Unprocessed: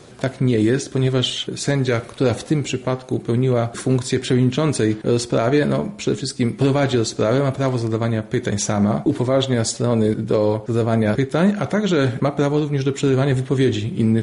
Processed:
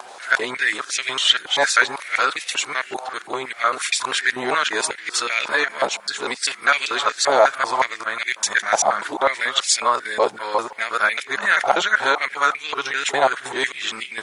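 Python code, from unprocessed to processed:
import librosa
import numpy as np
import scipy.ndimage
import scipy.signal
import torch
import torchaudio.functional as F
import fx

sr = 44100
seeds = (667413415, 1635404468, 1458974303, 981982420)

y = fx.local_reverse(x, sr, ms=196.0)
y = fx.dmg_noise_colour(y, sr, seeds[0], colour='brown', level_db=-52.0)
y = fx.filter_held_highpass(y, sr, hz=5.5, low_hz=810.0, high_hz=2300.0)
y = y * librosa.db_to_amplitude(4.5)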